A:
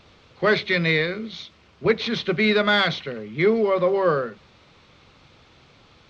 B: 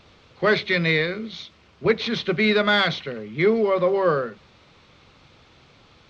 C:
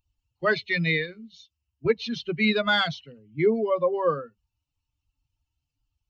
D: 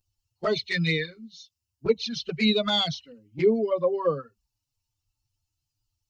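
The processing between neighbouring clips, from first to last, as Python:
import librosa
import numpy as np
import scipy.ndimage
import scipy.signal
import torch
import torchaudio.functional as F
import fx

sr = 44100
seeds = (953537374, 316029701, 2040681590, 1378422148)

y1 = x
y2 = fx.bin_expand(y1, sr, power=2.0)
y3 = fx.env_flanger(y2, sr, rest_ms=9.2, full_db=-19.5)
y3 = fx.high_shelf_res(y3, sr, hz=3700.0, db=7.0, q=1.5)
y3 = y3 * 10.0 ** (1.5 / 20.0)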